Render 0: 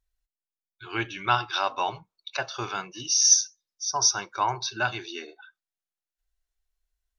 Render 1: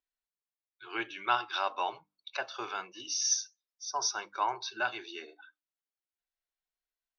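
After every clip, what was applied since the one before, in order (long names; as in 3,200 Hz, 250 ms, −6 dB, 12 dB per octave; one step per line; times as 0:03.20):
three-way crossover with the lows and the highs turned down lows −21 dB, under 250 Hz, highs −13 dB, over 5,100 Hz
mains-hum notches 50/100/150/200/250/300 Hz
level −5 dB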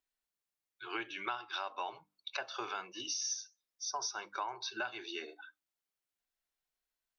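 downward compressor 6 to 1, threshold −38 dBFS, peak gain reduction 15.5 dB
level +2.5 dB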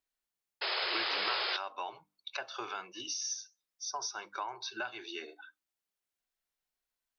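sound drawn into the spectrogram noise, 0:00.61–0:01.57, 350–5,200 Hz −34 dBFS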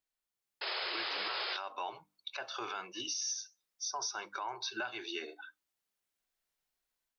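brickwall limiter −30.5 dBFS, peak gain reduction 10.5 dB
automatic gain control gain up to 5 dB
level −2.5 dB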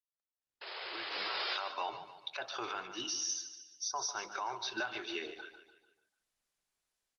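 fade in at the beginning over 1.63 s
repeating echo 147 ms, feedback 45%, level −11 dB
level +1.5 dB
Opus 20 kbit/s 48,000 Hz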